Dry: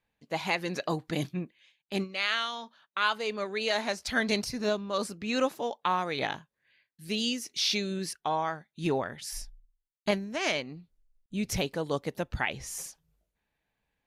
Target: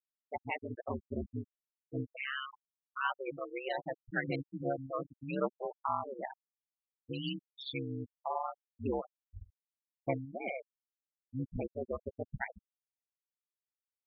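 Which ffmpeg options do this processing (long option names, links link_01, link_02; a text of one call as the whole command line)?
ffmpeg -i in.wav -af "lowpass=4300,bandreject=frequency=111.2:width_type=h:width=4,bandreject=frequency=222.4:width_type=h:width=4,bandreject=frequency=333.6:width_type=h:width=4,bandreject=frequency=444.8:width_type=h:width=4,bandreject=frequency=556:width_type=h:width=4,bandreject=frequency=667.2:width_type=h:width=4,bandreject=frequency=778.4:width_type=h:width=4,bandreject=frequency=889.6:width_type=h:width=4,bandreject=frequency=1000.8:width_type=h:width=4,bandreject=frequency=1112:width_type=h:width=4,bandreject=frequency=1223.2:width_type=h:width=4,bandreject=frequency=1334.4:width_type=h:width=4,bandreject=frequency=1445.6:width_type=h:width=4,bandreject=frequency=1556.8:width_type=h:width=4,bandreject=frequency=1668:width_type=h:width=4,bandreject=frequency=1779.2:width_type=h:width=4,bandreject=frequency=1890.4:width_type=h:width=4,bandreject=frequency=2001.6:width_type=h:width=4,bandreject=frequency=2112.8:width_type=h:width=4,bandreject=frequency=2224:width_type=h:width=4,bandreject=frequency=2335.2:width_type=h:width=4,bandreject=frequency=2446.4:width_type=h:width=4,bandreject=frequency=2557.6:width_type=h:width=4,afftfilt=real='re*gte(hypot(re,im),0.112)':imag='im*gte(hypot(re,im),0.112)':win_size=1024:overlap=0.75,aeval=exprs='val(0)*sin(2*PI*68*n/s)':channel_layout=same,volume=-2.5dB" out.wav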